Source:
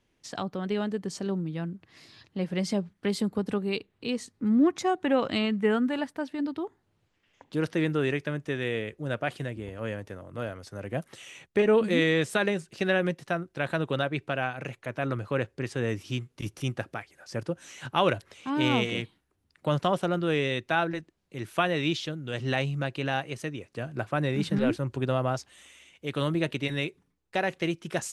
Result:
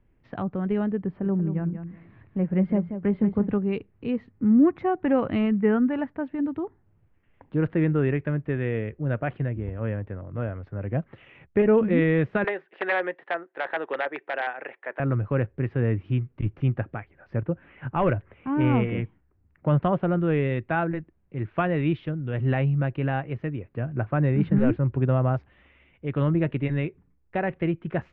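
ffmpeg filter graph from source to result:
-filter_complex "[0:a]asettb=1/sr,asplit=3[s0][s1][s2];[s0]atrim=end=1.064[s3];[s1]atrim=start=1.06:end=3.49,asetpts=PTS-STARTPTS,afade=t=in:d=0.004:c=qsin,afade=t=out:st=2.426:d=0.004:c=qsin,lowpass=2200,aecho=1:1:184|368:0.335|0.0569,atrim=end_sample=107163[s4];[s2]atrim=start=3.486[s5];[s3][s4]acrossfade=d=0.004:c1=hsin:c2=qsin[s6];[s6][s5]acrossfade=d=0.004:c1=qsin:c2=hsin,asettb=1/sr,asplit=3[s7][s8][s9];[s7]atrim=end=12.444[s10];[s8]atrim=start=12.44:end=15,asetpts=PTS-STARTPTS,afade=t=in:d=0.004:c=qsin,afade=t=out:st=2.556:d=0.004:c=qsin,aeval=exprs='(mod(6.31*val(0)+1,2)-1)/6.31':c=same,highpass=f=390:w=0.5412,highpass=f=390:w=1.3066,equalizer=f=840:t=q:w=4:g=5,equalizer=f=1800:t=q:w=4:g=9,equalizer=f=3400:t=q:w=4:g=6,lowpass=f=7100:w=0.5412,lowpass=f=7100:w=1.3066[s11];[s9]atrim=start=14.996[s12];[s10][s11]acrossfade=d=0.004:c1=hsin:c2=qsin[s13];[s13][s12]acrossfade=d=0.004:c1=qsin:c2=hsin,asettb=1/sr,asplit=3[s14][s15][s16];[s14]atrim=end=17.374[s17];[s15]atrim=start=17.37:end=19.68,asetpts=PTS-STARTPTS,afade=t=in:d=0.004:c=qsin,afade=t=out:st=2.306:d=0.004:c=qsin,lowpass=f=3000:w=0.5412,lowpass=f=3000:w=1.3066,asoftclip=type=hard:threshold=0.15[s18];[s16]atrim=start=19.676[s19];[s17][s18]acrossfade=d=0.004:c1=hsin:c2=qsin[s20];[s20][s19]acrossfade=d=0.004:c1=qsin:c2=hsin,lowpass=f=2400:w=0.5412,lowpass=f=2400:w=1.3066,aemphasis=mode=reproduction:type=bsi"

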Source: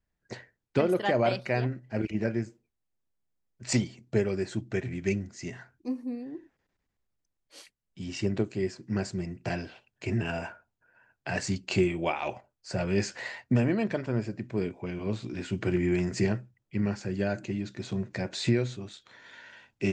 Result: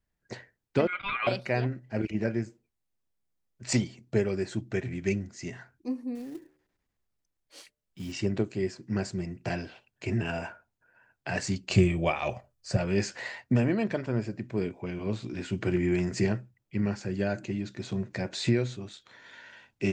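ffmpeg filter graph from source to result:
-filter_complex "[0:a]asettb=1/sr,asplit=3[s0][s1][s2];[s0]atrim=end=0.874[s3];[s1]atrim=start=0.87:end=1.27,asetpts=PTS-STARTPTS,afade=t=in:d=0.004:c=qsin,afade=t=out:st=0.396:d=0.004:c=qsin,lowpass=f=1700:w=0.5412,lowpass=f=1700:w=1.3066,equalizer=f=190:w=0.49:g=-9.5,aeval=exprs='val(0)*sin(2*PI*1800*n/s)':c=same[s4];[s2]atrim=start=1.266[s5];[s3][s4]acrossfade=d=0.004:c1=hsin:c2=qsin[s6];[s6][s5]acrossfade=d=0.004:c1=qsin:c2=hsin,asettb=1/sr,asplit=3[s7][s8][s9];[s7]atrim=end=6.154[s10];[s8]atrim=start=6.15:end=8.12,asetpts=PTS-STARTPTS,afade=t=in:d=0.004:c=qsin,afade=t=out:st=1.966:d=0.004:c=qsin,bandreject=f=74.82:t=h:w=4,bandreject=f=149.64:t=h:w=4,bandreject=f=224.46:t=h:w=4,bandreject=f=299.28:t=h:w=4,bandreject=f=374.1:t=h:w=4,bandreject=f=448.92:t=h:w=4,bandreject=f=523.74:t=h:w=4,bandreject=f=598.56:t=h:w=4,acrusher=bits=5:mode=log:mix=0:aa=0.000001[s11];[s9]atrim=start=8.116[s12];[s10][s11]acrossfade=d=0.004:c1=hsin:c2=qsin[s13];[s13][s12]acrossfade=d=0.004:c1=qsin:c2=hsin,asettb=1/sr,asplit=3[s14][s15][s16];[s14]atrim=end=11.694[s17];[s15]atrim=start=11.69:end=12.77,asetpts=PTS-STARTPTS,afade=t=in:d=0.004:c=qsin,afade=t=out:st=1.076:d=0.004:c=qsin,bass=f=250:g=8,treble=f=4000:g=3,aecho=1:1:1.7:0.36,atrim=end_sample=47628[s18];[s16]atrim=start=12.766[s19];[s17][s18]acrossfade=d=0.004:c1=hsin:c2=qsin[s20];[s20][s19]acrossfade=d=0.004:c1=qsin:c2=hsin"

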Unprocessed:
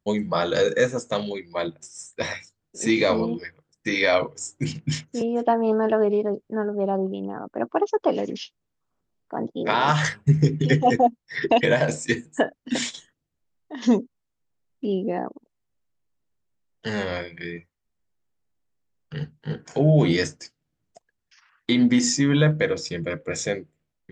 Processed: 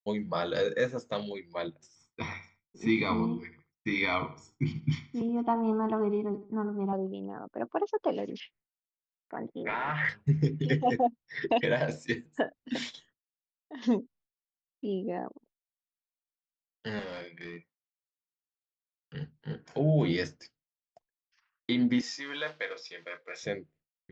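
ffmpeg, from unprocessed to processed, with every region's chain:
-filter_complex "[0:a]asettb=1/sr,asplit=3[s0][s1][s2];[s0]atrim=end=1.954[s3];[s1]atrim=start=1.95:end=6.93,asetpts=PTS-STARTPTS,afade=t=in:d=0.004:c=qsin,afade=t=out:st=4.976:d=0.004:c=qsin,aemphasis=mode=reproduction:type=75fm,aecho=1:1:0.9:0.91,atrim=end_sample=219618,asplit=2[s4][s5];[s5]adelay=76,lowpass=f=4900:p=1,volume=0.2,asplit=2[s6][s7];[s7]adelay=76,lowpass=f=4900:p=1,volume=0.31,asplit=2[s8][s9];[s9]adelay=76,lowpass=f=4900:p=1,volume=0.31[s10];[s4][s6][s8][s10]amix=inputs=4:normalize=0,atrim=end_sample=219618[s11];[s2]atrim=start=6.926[s12];[s3][s11]acrossfade=d=0.004:c1=hsin:c2=qsin[s13];[s13][s12]acrossfade=d=0.004:c1=qsin:c2=hsin,asettb=1/sr,asplit=3[s14][s15][s16];[s14]atrim=end=8.404[s17];[s15]atrim=start=8.4:end=10.09,asetpts=PTS-STARTPTS,afade=t=in:d=0.004:c=qsin,afade=t=out:st=1.686:d=0.004:c=qsin,asoftclip=type=hard:threshold=0.2,acompressor=threshold=0.0562:ratio=2.5:attack=3.2:release=140:knee=1:detection=peak,lowpass=f=2100:t=q:w=4.6[s18];[s16]atrim=start=10.086[s19];[s17][s18]acrossfade=d=0.004:c1=hsin:c2=qsin[s20];[s20][s19]acrossfade=d=0.004:c1=qsin:c2=hsin,asettb=1/sr,asplit=3[s21][s22][s23];[s21]atrim=end=16.994[s24];[s22]atrim=start=16.99:end=19.15,asetpts=PTS-STARTPTS,afade=t=in:d=0.004:c=qsin,afade=t=out:st=2.156:d=0.004:c=qsin,highpass=f=150:w=0.5412,highpass=f=150:w=1.3066,volume=26.6,asoftclip=hard,volume=0.0376[s25];[s23]atrim=start=19.146[s26];[s24][s25]acrossfade=d=0.004:c1=hsin:c2=qsin[s27];[s27][s26]acrossfade=d=0.004:c1=qsin:c2=hsin,asettb=1/sr,asplit=3[s28][s29][s30];[s28]atrim=end=22.014[s31];[s29]atrim=start=22.01:end=23.43,asetpts=PTS-STARTPTS,afade=t=in:d=0.004:c=qsin,afade=t=out:st=1.416:d=0.004:c=qsin,acrusher=bits=6:mode=log:mix=0:aa=0.000001,highpass=760,lowpass=5900,asplit=2[s32][s33];[s33]adelay=31,volume=0.299[s34];[s32][s34]amix=inputs=2:normalize=0,atrim=end_sample=62622[s35];[s30]atrim=start=23.426[s36];[s31][s35]acrossfade=d=0.004:c1=hsin:c2=qsin[s37];[s37][s36]acrossfade=d=0.004:c1=qsin:c2=hsin,lowpass=f=5300:w=0.5412,lowpass=f=5300:w=1.3066,agate=range=0.0224:threshold=0.00282:ratio=3:detection=peak,volume=0.398"

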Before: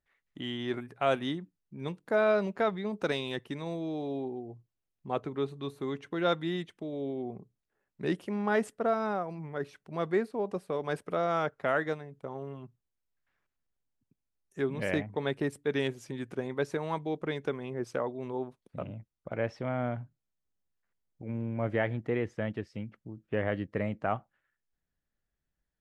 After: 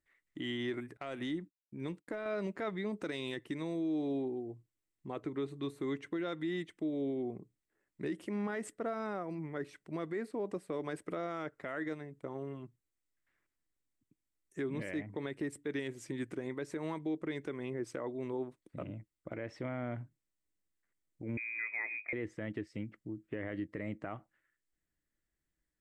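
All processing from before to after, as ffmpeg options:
-filter_complex "[0:a]asettb=1/sr,asplit=3[s0][s1][s2];[s0]atrim=end=0.974[s3];[s1]atrim=start=0.97:end=2.26,asetpts=PTS-STARTPTS,afade=t=in:d=0.004:c=qsin,afade=t=out:st=1.286:d=0.004:c=qsin,agate=range=0.0224:threshold=0.00316:ratio=3:release=100:detection=peak,acompressor=threshold=0.0251:ratio=12:attack=3.2:release=140:knee=1:detection=peak,aeval=exprs='(tanh(17.8*val(0)+0.15)-tanh(0.15))/17.8':c=same[s4];[s2]atrim=start=2.256[s5];[s3][s4]acrossfade=d=0.004:c1=hsin:c2=qsin[s6];[s6][s5]acrossfade=d=0.004:c1=qsin:c2=hsin,asettb=1/sr,asplit=3[s7][s8][s9];[s7]atrim=end=21.374[s10];[s8]atrim=start=21.37:end=22.13,asetpts=PTS-STARTPTS,afade=t=in:d=0.004:c=qsin,afade=t=out:st=0.756:d=0.004:c=qsin,acompressor=threshold=0.0126:ratio=2.5:attack=3.2:release=140:knee=1:detection=peak,lowpass=f=2200:t=q:w=0.5098,lowpass=f=2200:t=q:w=0.6013,lowpass=f=2200:t=q:w=0.9,lowpass=f=2200:t=q:w=2.563,afreqshift=-2600[s11];[s9]atrim=start=22.126[s12];[s10][s11]acrossfade=d=0.004:c1=hsin:c2=qsin[s13];[s13][s12]acrossfade=d=0.004:c1=qsin:c2=hsin,equalizer=f=315:t=o:w=0.33:g=10,equalizer=f=800:t=o:w=0.33:g=-4,equalizer=f=2000:t=o:w=0.33:g=7,equalizer=f=8000:t=o:w=0.33:g=8,alimiter=level_in=1.19:limit=0.0631:level=0:latency=1:release=111,volume=0.841,volume=0.708"

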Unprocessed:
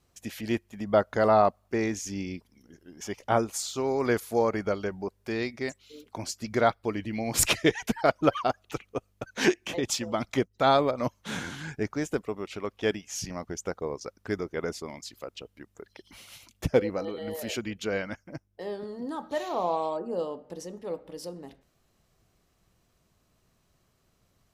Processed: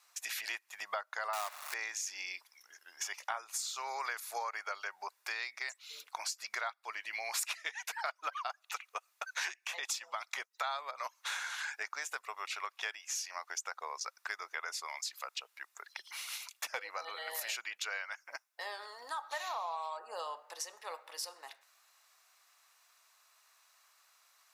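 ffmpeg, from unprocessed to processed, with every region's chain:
-filter_complex "[0:a]asettb=1/sr,asplit=3[s0][s1][s2];[s0]atrim=end=1.334[s3];[s1]atrim=start=1.33:end=1.74,asetpts=PTS-STARTPTS,afade=t=in:d=0.004:c=qsin,afade=t=out:st=0.406:d=0.004:c=qsin,aeval=exprs='val(0)+0.5*0.0251*sgn(val(0))':c=same,bandreject=f=50:t=h:w=6,bandreject=f=100:t=h:w=6,bandreject=f=150:t=h:w=6,bandreject=f=200:t=h:w=6,acrusher=bits=2:mode=log:mix=0:aa=0.000001[s4];[s2]atrim=start=1.736[s5];[s3][s4]acrossfade=d=0.004:c1=hsin:c2=qsin[s6];[s6][s5]acrossfade=d=0.004:c1=qsin:c2=hsin,highpass=f=940:w=0.5412,highpass=f=940:w=1.3066,bandreject=f=3100:w=11,acompressor=threshold=0.00631:ratio=6,volume=2.51"

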